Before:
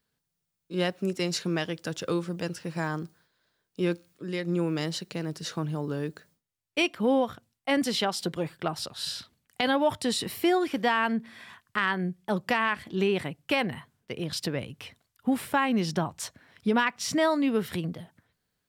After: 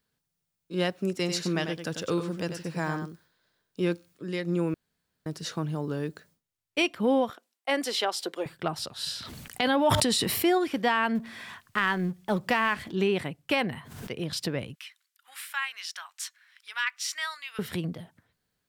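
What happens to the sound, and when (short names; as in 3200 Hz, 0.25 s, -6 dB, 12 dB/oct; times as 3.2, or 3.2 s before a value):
1.15–3.82 echo 95 ms -8 dB
4.74–5.26 room tone
7.3–8.46 HPF 330 Hz 24 dB/oct
9.17–10.58 sustainer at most 20 dB/s
11.15–12.92 G.711 law mismatch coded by mu
13.69–14.11 backwards sustainer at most 53 dB/s
14.75–17.59 HPF 1400 Hz 24 dB/oct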